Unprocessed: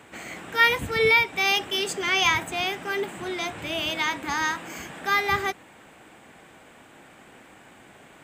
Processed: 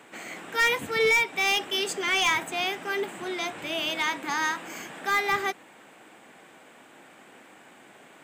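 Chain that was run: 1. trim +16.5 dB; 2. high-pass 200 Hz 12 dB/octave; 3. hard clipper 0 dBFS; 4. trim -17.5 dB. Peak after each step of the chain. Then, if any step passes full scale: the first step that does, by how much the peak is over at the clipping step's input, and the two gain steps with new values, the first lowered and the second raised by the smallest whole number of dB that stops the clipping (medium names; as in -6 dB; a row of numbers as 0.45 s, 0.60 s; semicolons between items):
+9.5 dBFS, +9.5 dBFS, 0.0 dBFS, -17.5 dBFS; step 1, 9.5 dB; step 1 +6.5 dB, step 4 -7.5 dB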